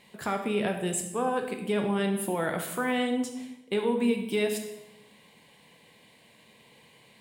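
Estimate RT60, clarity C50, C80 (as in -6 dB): 0.95 s, 7.5 dB, 9.5 dB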